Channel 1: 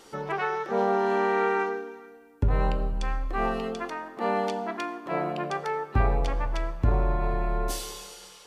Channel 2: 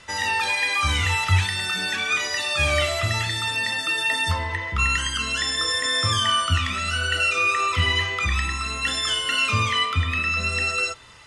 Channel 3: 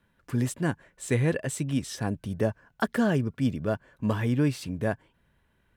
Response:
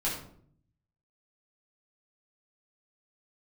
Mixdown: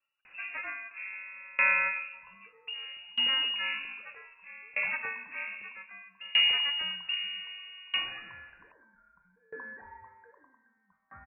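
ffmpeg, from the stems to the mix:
-filter_complex "[0:a]adelay=250,volume=1.5dB[link_01];[1:a]highpass=frequency=920:width=0.5412,highpass=frequency=920:width=1.3066,adelay=2050,volume=-17.5dB[link_02];[2:a]aecho=1:1:3.9:0.7,volume=-17.5dB[link_03];[link_01][link_02][link_03]amix=inputs=3:normalize=0,lowpass=frequency=2500:width_type=q:width=0.5098,lowpass=frequency=2500:width_type=q:width=0.6013,lowpass=frequency=2500:width_type=q:width=0.9,lowpass=frequency=2500:width_type=q:width=2.563,afreqshift=-2900,aeval=exprs='val(0)*pow(10,-27*if(lt(mod(0.63*n/s,1),2*abs(0.63)/1000),1-mod(0.63*n/s,1)/(2*abs(0.63)/1000),(mod(0.63*n/s,1)-2*abs(0.63)/1000)/(1-2*abs(0.63)/1000))/20)':channel_layout=same"

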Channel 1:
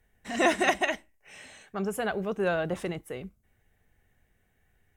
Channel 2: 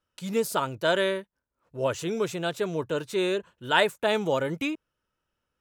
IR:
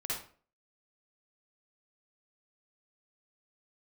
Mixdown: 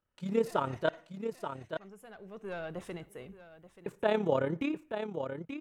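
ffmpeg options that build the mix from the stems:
-filter_complex "[0:a]aeval=exprs='(tanh(7.08*val(0)+0.35)-tanh(0.35))/7.08':channel_layout=same,adelay=50,volume=-8dB,afade=type=in:start_time=2.13:duration=0.7:silence=0.237137,asplit=3[link_01][link_02][link_03];[link_02]volume=-20.5dB[link_04];[link_03]volume=-14.5dB[link_05];[1:a]tremolo=f=34:d=0.621,lowpass=frequency=1300:poles=1,volume=0dB,asplit=3[link_06][link_07][link_08];[link_06]atrim=end=0.89,asetpts=PTS-STARTPTS,afade=type=out:start_time=0.886:duration=0.004:curve=hsin[link_09];[link_07]atrim=start=0.89:end=3.86,asetpts=PTS-STARTPTS,volume=0[link_10];[link_08]atrim=start=3.86,asetpts=PTS-STARTPTS,afade=type=in:duration=0.004:curve=hsin[link_11];[link_09][link_10][link_11]concat=n=3:v=0:a=1,asplit=4[link_12][link_13][link_14][link_15];[link_13]volume=-22.5dB[link_16];[link_14]volume=-7.5dB[link_17];[link_15]apad=whole_len=221131[link_18];[link_01][link_18]sidechaincompress=threshold=-30dB:ratio=8:attack=6.3:release=897[link_19];[2:a]atrim=start_sample=2205[link_20];[link_04][link_16]amix=inputs=2:normalize=0[link_21];[link_21][link_20]afir=irnorm=-1:irlink=0[link_22];[link_05][link_17]amix=inputs=2:normalize=0,aecho=0:1:881:1[link_23];[link_19][link_12][link_22][link_23]amix=inputs=4:normalize=0"

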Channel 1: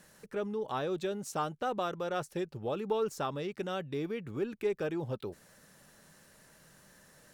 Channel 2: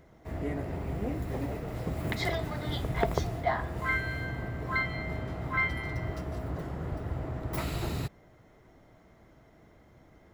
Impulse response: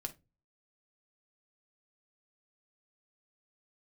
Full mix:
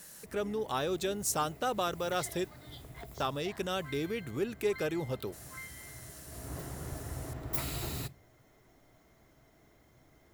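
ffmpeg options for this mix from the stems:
-filter_complex "[0:a]volume=0.5dB,asplit=3[link_01][link_02][link_03];[link_01]atrim=end=2.46,asetpts=PTS-STARTPTS,afade=type=out:start_time=2.456:duration=0.004:curve=hsin[link_04];[link_02]atrim=start=2.46:end=3.2,asetpts=PTS-STARTPTS,volume=0[link_05];[link_03]atrim=start=3.2,asetpts=PTS-STARTPTS,afade=type=in:duration=0.004:curve=hsin[link_06];[link_04][link_05][link_06]concat=n=3:v=0:a=1[link_07];[1:a]acrossover=split=320|3000[link_08][link_09][link_10];[link_09]acompressor=threshold=-31dB:ratio=6[link_11];[link_08][link_11][link_10]amix=inputs=3:normalize=0,volume=-9dB,afade=type=in:start_time=6.25:duration=0.3:silence=0.266073,asplit=2[link_12][link_13];[link_13]volume=-5.5dB[link_14];[2:a]atrim=start_sample=2205[link_15];[link_14][link_15]afir=irnorm=-1:irlink=0[link_16];[link_07][link_12][link_16]amix=inputs=3:normalize=0,crystalizer=i=3:c=0"

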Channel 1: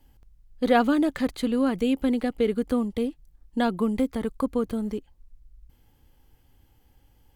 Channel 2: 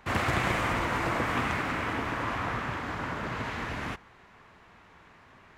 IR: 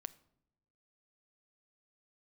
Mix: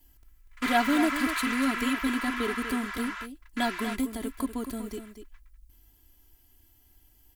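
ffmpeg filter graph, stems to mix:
-filter_complex "[0:a]equalizer=frequency=510:width_type=o:width=0.23:gain=-3.5,crystalizer=i=3:c=0,volume=-7dB,asplit=3[link_01][link_02][link_03];[link_02]volume=-9.5dB[link_04];[1:a]highpass=frequency=1200:width=0.5412,highpass=frequency=1200:width=1.3066,volume=-0.5dB[link_05];[link_03]apad=whole_len=246003[link_06];[link_05][link_06]sidechaingate=range=-52dB:threshold=-51dB:ratio=16:detection=peak[link_07];[link_04]aecho=0:1:242:1[link_08];[link_01][link_07][link_08]amix=inputs=3:normalize=0,aecho=1:1:3:0.79"

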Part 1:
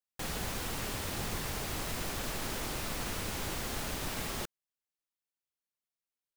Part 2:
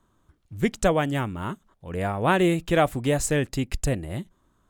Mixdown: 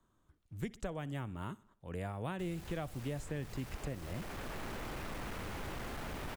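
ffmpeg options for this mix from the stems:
ffmpeg -i stem1.wav -i stem2.wav -filter_complex "[0:a]asoftclip=type=tanh:threshold=-38dB,adelay=2200,volume=3dB[link_01];[1:a]volume=-8.5dB,asplit=3[link_02][link_03][link_04];[link_03]volume=-23.5dB[link_05];[link_04]apad=whole_len=381999[link_06];[link_01][link_06]sidechaincompress=threshold=-36dB:ratio=3:attack=29:release=1010[link_07];[link_05]aecho=0:1:62|124|186|248|310|372:1|0.45|0.202|0.0911|0.041|0.0185[link_08];[link_07][link_02][link_08]amix=inputs=3:normalize=0,acrossover=split=160|2700[link_09][link_10][link_11];[link_09]acompressor=threshold=-41dB:ratio=4[link_12];[link_10]acompressor=threshold=-41dB:ratio=4[link_13];[link_11]acompressor=threshold=-57dB:ratio=4[link_14];[link_12][link_13][link_14]amix=inputs=3:normalize=0" out.wav

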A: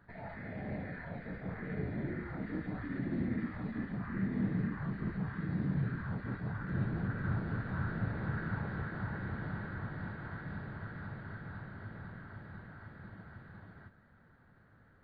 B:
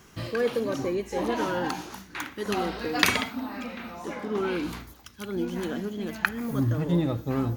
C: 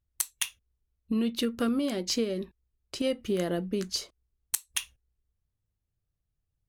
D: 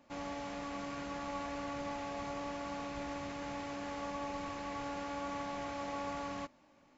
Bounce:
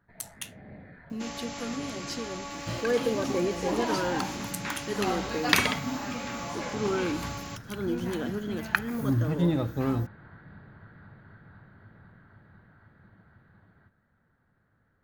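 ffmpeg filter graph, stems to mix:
ffmpeg -i stem1.wav -i stem2.wav -i stem3.wav -i stem4.wav -filter_complex "[0:a]volume=-7dB[link_01];[1:a]adelay=2500,volume=-0.5dB[link_02];[2:a]flanger=delay=8.4:depth=8.8:regen=75:speed=1.9:shape=triangular,volume=-4dB[link_03];[3:a]crystalizer=i=5.5:c=0,alimiter=level_in=6dB:limit=-24dB:level=0:latency=1:release=250,volume=-6dB,asoftclip=type=hard:threshold=-32dB,adelay=1100,volume=1dB[link_04];[link_01][link_02][link_03][link_04]amix=inputs=4:normalize=0" out.wav

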